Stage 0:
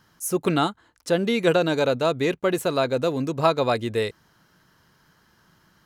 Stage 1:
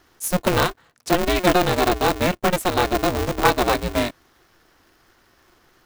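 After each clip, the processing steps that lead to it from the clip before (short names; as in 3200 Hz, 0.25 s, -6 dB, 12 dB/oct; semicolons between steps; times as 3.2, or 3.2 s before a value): polarity switched at an audio rate 180 Hz; gain +2.5 dB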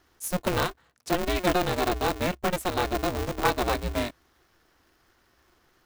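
bell 65 Hz +9.5 dB 0.25 oct; gain -7 dB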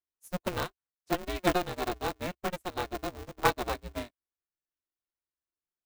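upward expander 2.5:1, over -46 dBFS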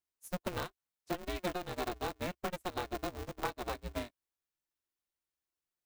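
compressor 12:1, threshold -34 dBFS, peak gain reduction 15.5 dB; gain +1 dB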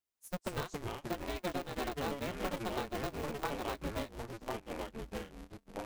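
echoes that change speed 0.155 s, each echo -4 st, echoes 2; gain -1.5 dB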